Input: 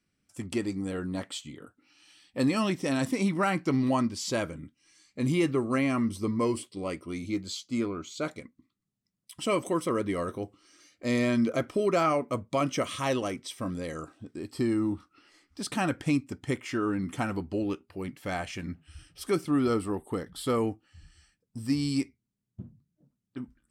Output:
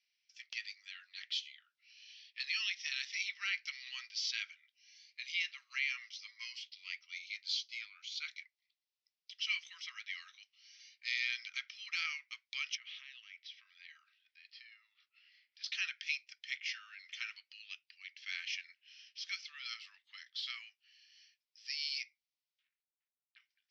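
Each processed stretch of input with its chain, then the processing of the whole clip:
0:12.75–0:15.64: Bessel high-pass filter 570 Hz + downward compressor, threshold −39 dBFS + high-frequency loss of the air 260 metres
0:22.63–0:23.40: leveller curve on the samples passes 2 + head-to-tape spacing loss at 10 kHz 34 dB
whole clip: Butterworth high-pass 2,100 Hz 36 dB per octave; de-essing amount 75%; Butterworth low-pass 5,800 Hz 72 dB per octave; level +3 dB

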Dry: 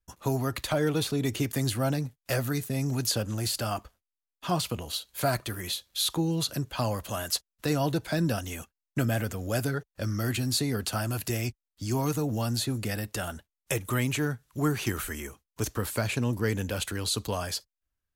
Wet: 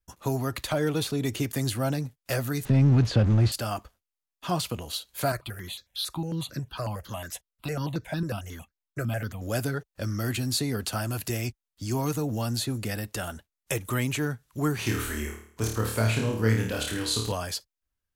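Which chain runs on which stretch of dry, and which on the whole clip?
0:02.65–0:03.52: converter with a step at zero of −31 dBFS + low-pass filter 3,100 Hz + low-shelf EQ 250 Hz +11 dB
0:05.32–0:09.42: high-shelf EQ 9,600 Hz −7.5 dB + step-sequenced phaser 11 Hz 860–3,000 Hz
0:14.76–0:17.32: high-shelf EQ 9,300 Hz −5 dB + flutter between parallel walls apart 4.6 metres, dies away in 0.54 s
whole clip: no processing

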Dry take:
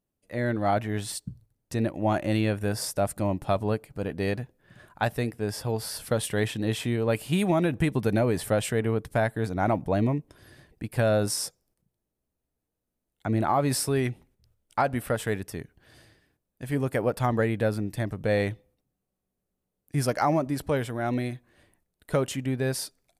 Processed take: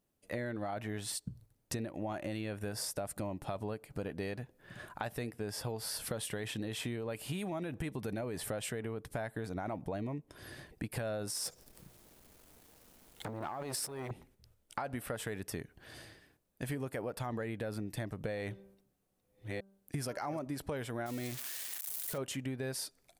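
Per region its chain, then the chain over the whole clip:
0:11.32–0:14.11: mu-law and A-law mismatch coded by mu + compressor whose output falls as the input rises −34 dBFS + saturating transformer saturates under 2,300 Hz
0:18.38–0:20.39: delay that plays each chunk backwards 613 ms, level −11 dB + hum removal 195.4 Hz, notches 8
0:21.06–0:22.18: spike at every zero crossing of −23 dBFS + downward compressor 4 to 1, threshold −28 dBFS
whole clip: low-shelf EQ 240 Hz −4.5 dB; brickwall limiter −21 dBFS; downward compressor 8 to 1, threshold −40 dBFS; level +4.5 dB

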